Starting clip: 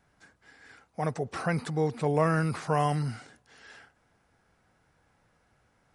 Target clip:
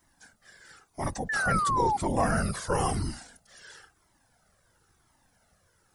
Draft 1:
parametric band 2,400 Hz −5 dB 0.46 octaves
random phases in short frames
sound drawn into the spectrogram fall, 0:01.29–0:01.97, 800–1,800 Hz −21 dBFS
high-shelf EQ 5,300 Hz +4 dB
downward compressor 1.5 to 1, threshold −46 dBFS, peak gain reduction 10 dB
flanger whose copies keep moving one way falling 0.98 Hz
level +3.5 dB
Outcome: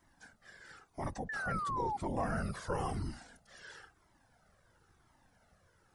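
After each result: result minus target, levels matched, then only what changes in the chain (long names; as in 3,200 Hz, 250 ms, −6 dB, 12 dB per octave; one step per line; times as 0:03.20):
downward compressor: peak gain reduction +10 dB; 8,000 Hz band −6.5 dB
remove: downward compressor 1.5 to 1, threshold −46 dBFS, peak gain reduction 10 dB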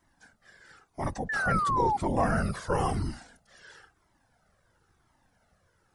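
8,000 Hz band −8.0 dB
change: high-shelf EQ 5,300 Hz +16 dB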